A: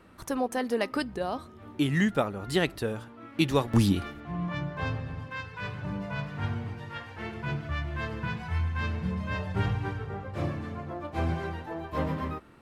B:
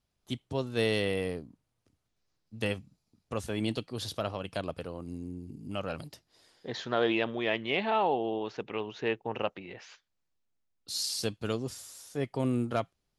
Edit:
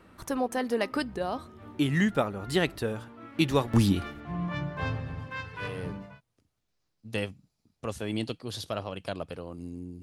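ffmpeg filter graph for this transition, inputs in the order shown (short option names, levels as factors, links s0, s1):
-filter_complex "[0:a]apad=whole_dur=10.02,atrim=end=10.02,atrim=end=6.21,asetpts=PTS-STARTPTS[s0];[1:a]atrim=start=1.01:end=5.5,asetpts=PTS-STARTPTS[s1];[s0][s1]acrossfade=d=0.68:c1=qsin:c2=qsin"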